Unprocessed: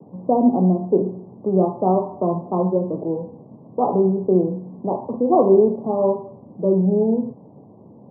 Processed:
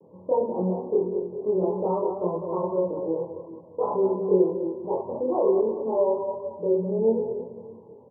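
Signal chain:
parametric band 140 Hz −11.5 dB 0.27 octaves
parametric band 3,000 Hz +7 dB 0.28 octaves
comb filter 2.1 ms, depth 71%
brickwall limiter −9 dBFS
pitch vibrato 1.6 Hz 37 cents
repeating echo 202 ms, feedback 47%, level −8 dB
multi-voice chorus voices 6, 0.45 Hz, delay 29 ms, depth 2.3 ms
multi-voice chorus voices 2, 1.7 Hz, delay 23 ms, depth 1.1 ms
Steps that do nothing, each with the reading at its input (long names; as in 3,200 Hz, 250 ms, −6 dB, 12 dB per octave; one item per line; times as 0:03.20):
parametric band 3,000 Hz: nothing at its input above 1,100 Hz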